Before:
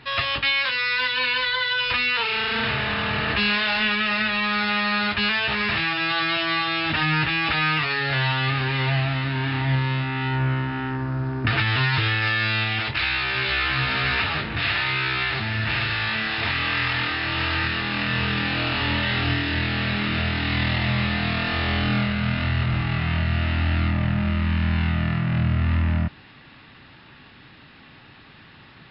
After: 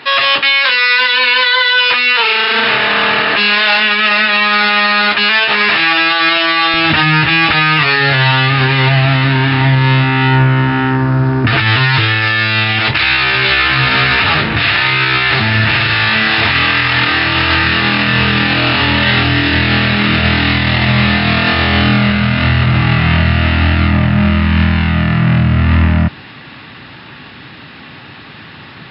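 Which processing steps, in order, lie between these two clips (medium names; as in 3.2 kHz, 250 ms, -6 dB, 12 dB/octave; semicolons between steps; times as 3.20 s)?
high-pass 310 Hz 12 dB/octave, from 6.74 s 84 Hz; loudness maximiser +15.5 dB; trim -1 dB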